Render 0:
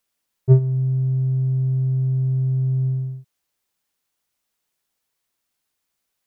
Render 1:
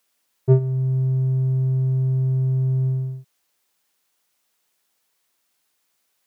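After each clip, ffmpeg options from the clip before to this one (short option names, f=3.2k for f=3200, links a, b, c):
-filter_complex "[0:a]lowshelf=f=150:g=-12,asplit=2[a][b];[b]alimiter=limit=-15.5dB:level=0:latency=1:release=468,volume=1.5dB[c];[a][c]amix=inputs=2:normalize=0"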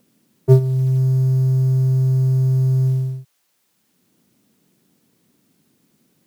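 -filter_complex "[0:a]acrossover=split=130|250[a][b][c];[b]acompressor=mode=upward:threshold=-42dB:ratio=2.5[d];[a][d][c]amix=inputs=3:normalize=0,acrusher=bits=9:mode=log:mix=0:aa=0.000001,volume=4dB"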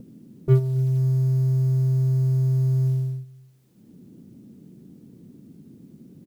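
-filter_complex "[0:a]acrossover=split=380[a][b];[a]acompressor=mode=upward:threshold=-22dB:ratio=2.5[c];[b]asoftclip=type=hard:threshold=-26.5dB[d];[c][d]amix=inputs=2:normalize=0,asplit=2[e][f];[f]adelay=268,lowpass=f=2k:p=1,volume=-23dB,asplit=2[g][h];[h]adelay=268,lowpass=f=2k:p=1,volume=0.32[i];[e][g][i]amix=inputs=3:normalize=0,volume=-5dB"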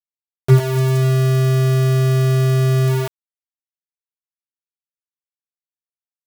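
-af "aeval=exprs='val(0)*gte(abs(val(0)),0.075)':c=same,volume=6dB"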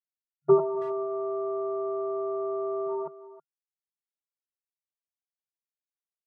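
-filter_complex "[0:a]afftfilt=real='re*between(b*sr/4096,150,1400)':imag='im*between(b*sr/4096,150,1400)':win_size=4096:overlap=0.75,agate=range=-33dB:threshold=-18dB:ratio=3:detection=peak,asplit=2[a][b];[b]adelay=320,highpass=300,lowpass=3.4k,asoftclip=type=hard:threshold=-20dB,volume=-16dB[c];[a][c]amix=inputs=2:normalize=0,volume=1.5dB"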